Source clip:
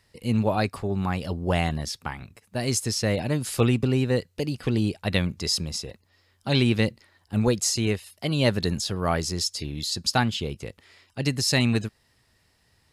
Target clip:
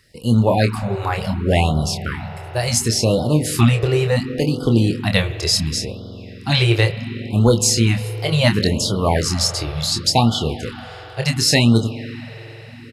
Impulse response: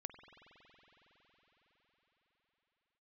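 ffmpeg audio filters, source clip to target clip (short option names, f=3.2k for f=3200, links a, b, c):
-filter_complex "[0:a]asplit=2[a][b];[b]adelay=26,volume=-6.5dB[c];[a][c]amix=inputs=2:normalize=0,asplit=2[d][e];[1:a]atrim=start_sample=2205[f];[e][f]afir=irnorm=-1:irlink=0,volume=5.5dB[g];[d][g]amix=inputs=2:normalize=0,afftfilt=real='re*(1-between(b*sr/1024,210*pow(2100/210,0.5+0.5*sin(2*PI*0.7*pts/sr))/1.41,210*pow(2100/210,0.5+0.5*sin(2*PI*0.7*pts/sr))*1.41))':imag='im*(1-between(b*sr/1024,210*pow(2100/210,0.5+0.5*sin(2*PI*0.7*pts/sr))/1.41,210*pow(2100/210,0.5+0.5*sin(2*PI*0.7*pts/sr))*1.41))':win_size=1024:overlap=0.75,volume=1dB"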